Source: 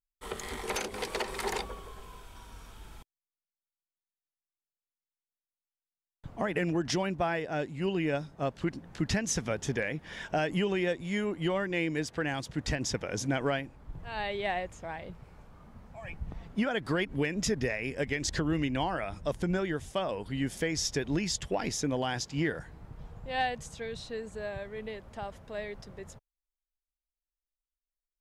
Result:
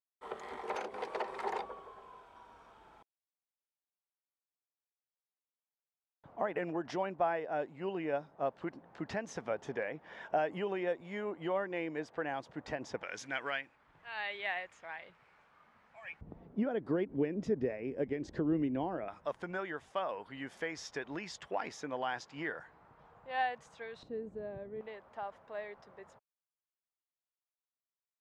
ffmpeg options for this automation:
-af "asetnsamples=n=441:p=0,asendcmd='13.03 bandpass f 1900;16.21 bandpass f 360;19.08 bandpass f 1100;24.03 bandpass f 300;24.81 bandpass f 990',bandpass=f=770:t=q:w=1.1:csg=0"

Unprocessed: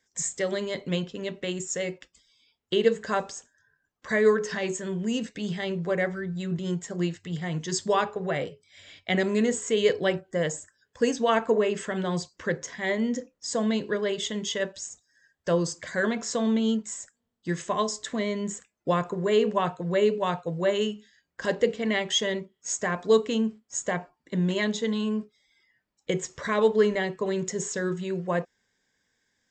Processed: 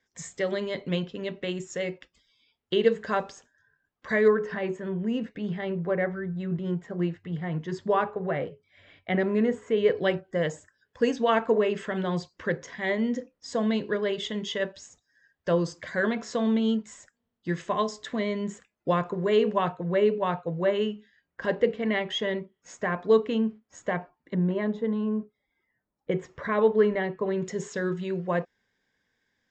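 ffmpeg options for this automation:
-af "asetnsamples=n=441:p=0,asendcmd='4.28 lowpass f 1900;9.97 lowpass f 3900;19.72 lowpass f 2600;24.35 lowpass f 1200;26.11 lowpass f 2100;27.42 lowpass f 4000',lowpass=3.9k"

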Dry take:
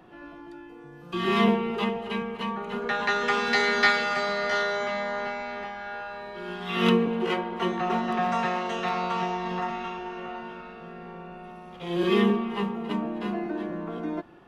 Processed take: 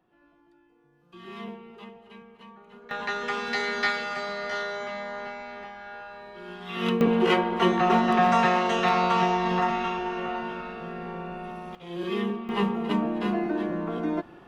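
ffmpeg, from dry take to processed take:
-af "asetnsamples=n=441:p=0,asendcmd='2.91 volume volume -5dB;7.01 volume volume 5.5dB;11.75 volume volume -7dB;12.49 volume volume 3.5dB',volume=-17.5dB"

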